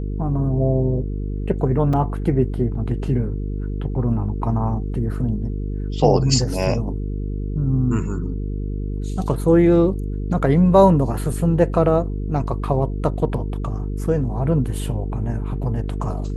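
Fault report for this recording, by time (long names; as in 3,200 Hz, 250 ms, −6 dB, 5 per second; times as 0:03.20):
mains buzz 50 Hz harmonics 9 −25 dBFS
0:01.93: drop-out 4.3 ms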